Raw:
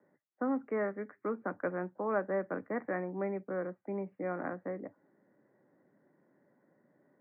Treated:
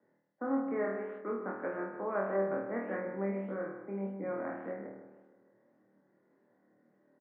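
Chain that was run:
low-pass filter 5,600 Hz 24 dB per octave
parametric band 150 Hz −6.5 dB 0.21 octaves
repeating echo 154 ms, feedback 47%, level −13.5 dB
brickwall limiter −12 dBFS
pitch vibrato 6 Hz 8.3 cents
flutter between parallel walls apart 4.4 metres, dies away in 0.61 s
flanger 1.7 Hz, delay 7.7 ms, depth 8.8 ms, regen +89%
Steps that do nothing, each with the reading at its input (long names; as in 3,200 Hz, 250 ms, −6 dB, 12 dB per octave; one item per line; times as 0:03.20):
low-pass filter 5,600 Hz: nothing at its input above 2,000 Hz
brickwall limiter −12 dBFS: peak of its input −18.5 dBFS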